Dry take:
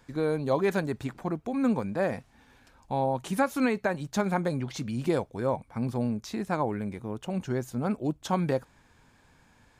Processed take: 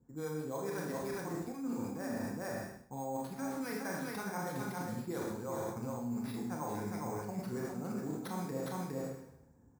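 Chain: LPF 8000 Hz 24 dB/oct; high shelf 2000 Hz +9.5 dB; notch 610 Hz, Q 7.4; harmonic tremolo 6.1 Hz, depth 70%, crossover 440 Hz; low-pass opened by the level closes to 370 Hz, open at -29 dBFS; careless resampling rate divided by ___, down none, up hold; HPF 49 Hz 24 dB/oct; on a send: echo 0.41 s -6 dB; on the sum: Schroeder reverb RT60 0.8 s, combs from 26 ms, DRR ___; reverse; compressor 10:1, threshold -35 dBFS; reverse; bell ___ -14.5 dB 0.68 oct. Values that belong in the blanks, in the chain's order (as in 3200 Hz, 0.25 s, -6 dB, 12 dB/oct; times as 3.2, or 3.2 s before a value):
6×, -0.5 dB, 3000 Hz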